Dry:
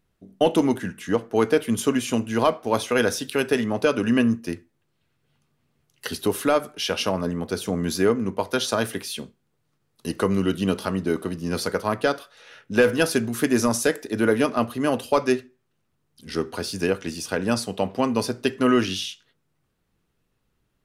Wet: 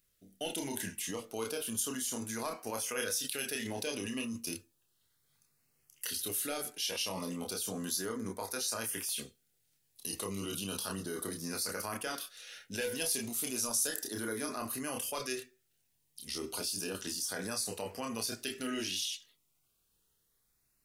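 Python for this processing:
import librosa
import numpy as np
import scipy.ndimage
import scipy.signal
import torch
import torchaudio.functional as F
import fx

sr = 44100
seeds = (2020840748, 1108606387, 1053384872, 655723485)

p1 = F.preemphasis(torch.from_numpy(x), 0.9).numpy()
p2 = fx.filter_lfo_notch(p1, sr, shape='saw_up', hz=0.33, low_hz=830.0, high_hz=4200.0, q=2.1)
p3 = fx.chorus_voices(p2, sr, voices=6, hz=0.11, base_ms=29, depth_ms=2.2, mix_pct=40)
p4 = fx.over_compress(p3, sr, threshold_db=-48.0, ratio=-1.0)
y = p3 + (p4 * librosa.db_to_amplitude(1.0))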